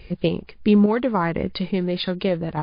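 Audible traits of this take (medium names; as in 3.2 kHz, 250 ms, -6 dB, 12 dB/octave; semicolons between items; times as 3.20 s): random-step tremolo; MP3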